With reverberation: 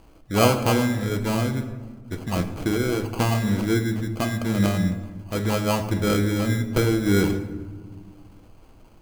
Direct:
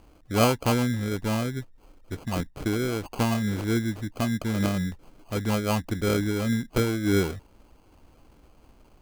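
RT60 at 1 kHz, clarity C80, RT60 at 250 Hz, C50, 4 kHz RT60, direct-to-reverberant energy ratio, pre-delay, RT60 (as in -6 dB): 1.3 s, 11.5 dB, 2.4 s, 10.0 dB, 0.75 s, 6.0 dB, 6 ms, 1.5 s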